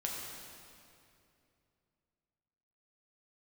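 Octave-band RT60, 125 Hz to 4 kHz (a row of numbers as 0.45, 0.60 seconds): 3.4, 3.1, 2.8, 2.4, 2.3, 2.1 seconds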